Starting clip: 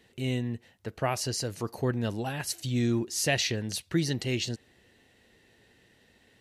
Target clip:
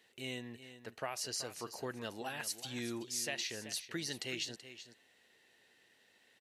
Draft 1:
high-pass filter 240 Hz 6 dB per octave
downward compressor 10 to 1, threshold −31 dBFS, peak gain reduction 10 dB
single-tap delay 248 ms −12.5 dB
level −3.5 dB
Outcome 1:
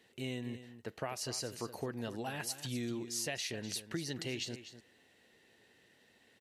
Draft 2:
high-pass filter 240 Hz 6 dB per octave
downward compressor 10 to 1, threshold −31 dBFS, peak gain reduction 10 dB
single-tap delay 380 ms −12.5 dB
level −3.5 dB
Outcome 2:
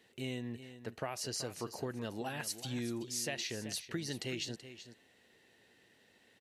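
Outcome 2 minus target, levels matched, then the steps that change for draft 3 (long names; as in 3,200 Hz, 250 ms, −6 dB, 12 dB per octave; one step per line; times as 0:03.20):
250 Hz band +3.5 dB
change: high-pass filter 800 Hz 6 dB per octave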